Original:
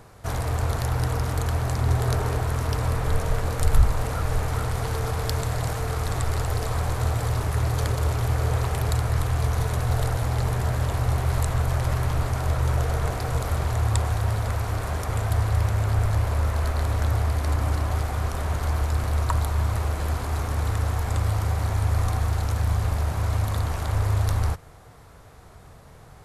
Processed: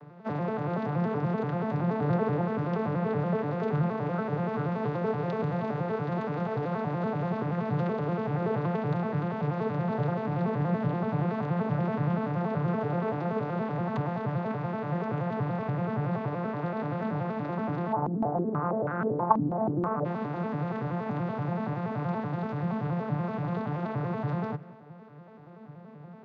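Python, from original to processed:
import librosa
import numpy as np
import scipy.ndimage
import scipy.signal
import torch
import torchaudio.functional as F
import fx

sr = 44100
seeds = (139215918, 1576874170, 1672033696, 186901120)

y = fx.vocoder_arp(x, sr, chord='minor triad', root=50, every_ms=95)
y = scipy.signal.sosfilt(scipy.signal.butter(2, 130.0, 'highpass', fs=sr, output='sos'), y)
y = fx.air_absorb(y, sr, metres=290.0)
y = y + 10.0 ** (-22.0 / 20.0) * np.pad(y, (int(189 * sr / 1000.0), 0))[:len(y)]
y = fx.filter_held_lowpass(y, sr, hz=6.2, low_hz=280.0, high_hz=1500.0, at=(17.92, 20.04), fade=0.02)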